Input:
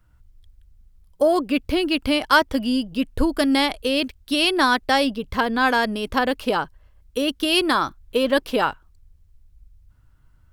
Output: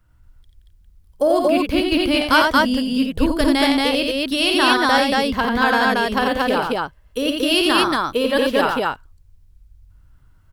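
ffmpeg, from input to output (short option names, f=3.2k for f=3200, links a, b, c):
-af "aecho=1:1:52.48|87.46|230.3:0.316|0.631|0.891"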